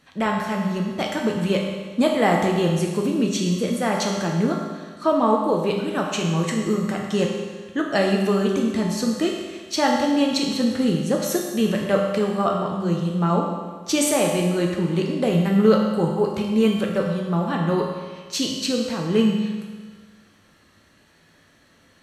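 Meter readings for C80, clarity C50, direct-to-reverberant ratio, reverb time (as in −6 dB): 4.0 dB, 2.5 dB, −1.0 dB, 1.5 s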